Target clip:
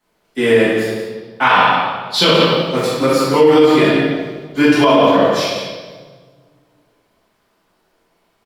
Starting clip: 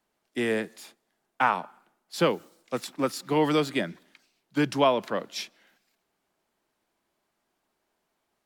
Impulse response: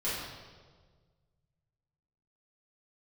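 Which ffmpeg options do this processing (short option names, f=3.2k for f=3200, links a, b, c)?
-filter_complex "[0:a]asettb=1/sr,asplit=3[a][b][c];[a]atrim=end=1.424[d];[b]atrim=start=1.42:end=2.25,asetpts=PTS-STARTPTS,afade=t=in:d=0.004:c=qsin,afade=t=out:st=0.826:d=0.004:c=qsin,equalizer=f=3.6k:w=1.3:g=15[e];[c]atrim=start=2.246[f];[d][e]acrossfade=d=0.004:c1=hsin:c2=qsin[g];[g][f]acrossfade=d=0.004:c1=qsin:c2=hsin,asettb=1/sr,asplit=3[h][i][j];[h]atrim=end=3.784[k];[i]atrim=start=3.78:end=4.85,asetpts=PTS-STARTPTS,afade=t=in:d=0.004:c=qsin,afade=t=out:st=1.066:d=0.004:c=qsin,aecho=1:1:2.9:0.55,atrim=end_sample=47187[l];[j]atrim=start=4.846[m];[k][l]acrossfade=d=0.004:c1=hsin:c2=qsin[n];[n][m]acrossfade=d=0.004:c1=qsin:c2=hsin,aecho=1:1:61.22|177.8:0.447|0.316[o];[1:a]atrim=start_sample=2205[p];[o][p]afir=irnorm=-1:irlink=0,alimiter=level_in=8dB:limit=-1dB:release=50:level=0:latency=1,volume=-1dB"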